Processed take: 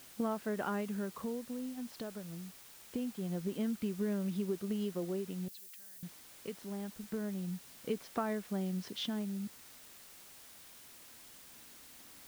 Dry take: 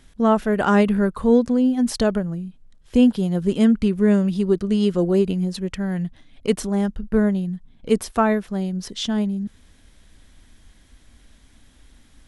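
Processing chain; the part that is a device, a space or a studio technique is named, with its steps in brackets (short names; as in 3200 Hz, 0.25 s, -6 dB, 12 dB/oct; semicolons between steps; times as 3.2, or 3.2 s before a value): medium wave at night (BPF 150–3700 Hz; compressor, threshold -26 dBFS, peak gain reduction 14 dB; tremolo 0.24 Hz, depth 59%; whine 9000 Hz -63 dBFS; white noise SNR 16 dB); 5.48–6.03 differentiator; gain -6.5 dB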